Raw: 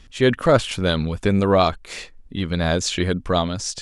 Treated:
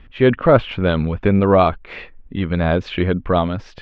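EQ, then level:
low-pass filter 2,700 Hz 24 dB per octave
dynamic equaliser 1,800 Hz, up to −4 dB, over −37 dBFS, Q 3.2
+3.5 dB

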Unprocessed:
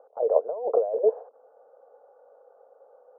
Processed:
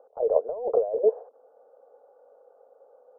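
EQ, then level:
low-shelf EQ 100 Hz +6.5 dB
low-shelf EQ 370 Hz +11 dB
−4.5 dB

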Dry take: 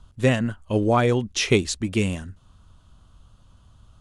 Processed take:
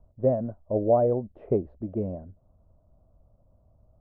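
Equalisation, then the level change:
transistor ladder low-pass 680 Hz, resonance 70%
+3.0 dB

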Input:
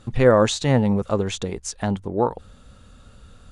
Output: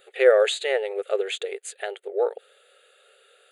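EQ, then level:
linear-phase brick-wall high-pass 380 Hz
phaser with its sweep stopped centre 2,400 Hz, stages 4
+3.5 dB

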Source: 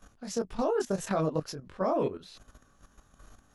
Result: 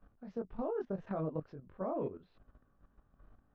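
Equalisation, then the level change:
high-frequency loss of the air 130 metres
head-to-tape spacing loss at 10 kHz 44 dB
−6.0 dB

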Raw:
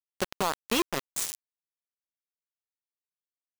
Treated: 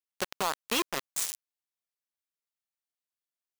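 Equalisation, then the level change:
low-shelf EQ 430 Hz −8.5 dB
0.0 dB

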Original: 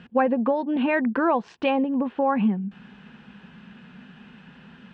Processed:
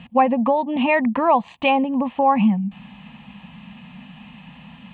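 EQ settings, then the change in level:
phaser with its sweep stopped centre 1,500 Hz, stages 6
+8.5 dB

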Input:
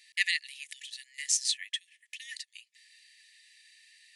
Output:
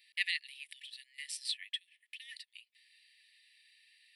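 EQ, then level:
phaser with its sweep stopped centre 2,900 Hz, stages 4
−3.5 dB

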